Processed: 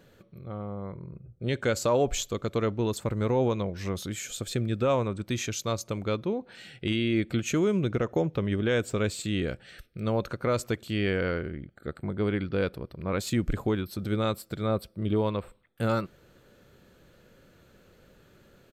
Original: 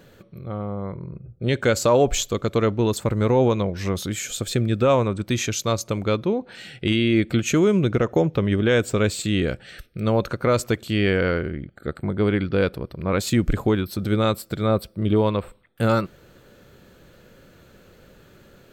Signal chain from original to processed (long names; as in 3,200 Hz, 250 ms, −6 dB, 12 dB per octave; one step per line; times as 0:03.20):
downsampling to 32,000 Hz
level −7 dB